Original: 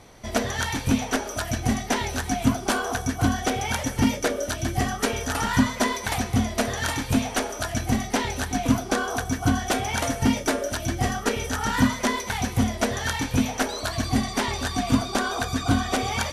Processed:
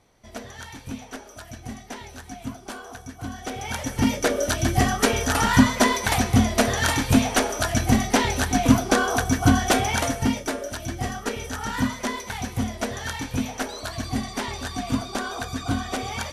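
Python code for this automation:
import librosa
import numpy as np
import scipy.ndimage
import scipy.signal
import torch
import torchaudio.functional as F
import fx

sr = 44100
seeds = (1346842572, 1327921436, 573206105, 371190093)

y = fx.gain(x, sr, db=fx.line((3.23, -12.5), (3.68, -4.0), (4.47, 4.5), (9.8, 4.5), (10.47, -4.0)))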